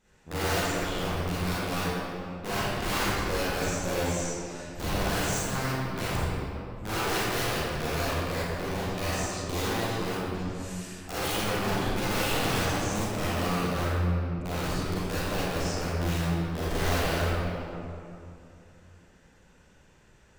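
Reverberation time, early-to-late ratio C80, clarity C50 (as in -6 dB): 2.7 s, -3.5 dB, -7.0 dB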